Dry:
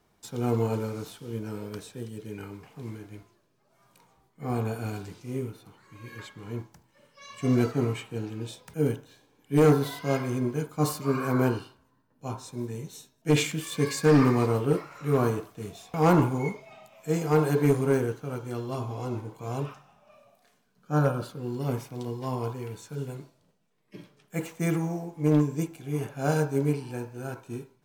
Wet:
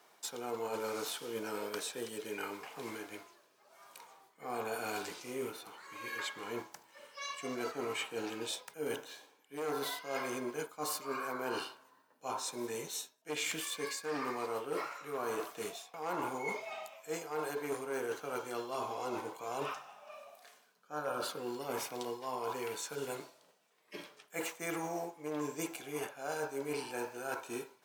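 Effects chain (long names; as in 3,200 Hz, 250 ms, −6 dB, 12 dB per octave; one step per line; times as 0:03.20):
high-pass filter 560 Hz 12 dB per octave
reversed playback
downward compressor 12 to 1, threshold −42 dBFS, peak gain reduction 22 dB
reversed playback
level +7.5 dB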